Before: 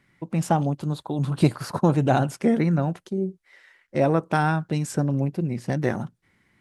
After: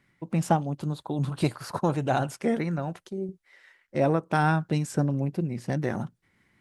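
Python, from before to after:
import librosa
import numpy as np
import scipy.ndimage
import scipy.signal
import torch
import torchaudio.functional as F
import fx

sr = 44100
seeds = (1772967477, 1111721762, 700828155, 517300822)

y = fx.peak_eq(x, sr, hz=200.0, db=-6.0, octaves=2.1, at=(1.29, 3.29))
y = fx.am_noise(y, sr, seeds[0], hz=5.7, depth_pct=65)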